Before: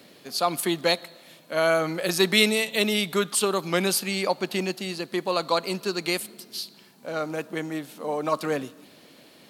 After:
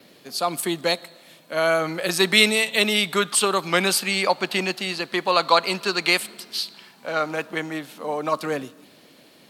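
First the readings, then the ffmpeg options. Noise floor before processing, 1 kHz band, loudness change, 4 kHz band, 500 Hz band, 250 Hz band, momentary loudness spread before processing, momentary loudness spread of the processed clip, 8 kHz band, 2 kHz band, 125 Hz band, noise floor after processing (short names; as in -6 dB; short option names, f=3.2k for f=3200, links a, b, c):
-53 dBFS, +5.0 dB, +3.5 dB, +4.5 dB, +1.5 dB, 0.0 dB, 12 LU, 12 LU, +3.5 dB, +5.5 dB, 0.0 dB, -53 dBFS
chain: -filter_complex "[0:a]adynamicequalizer=threshold=0.00355:dfrequency=8200:dqfactor=5.5:tfrequency=8200:tqfactor=5.5:attack=5:release=100:ratio=0.375:range=3:mode=boostabove:tftype=bell,acrossover=split=730|4600[a][b][c];[b]dynaudnorm=f=250:g=17:m=11.5dB[d];[a][d][c]amix=inputs=3:normalize=0"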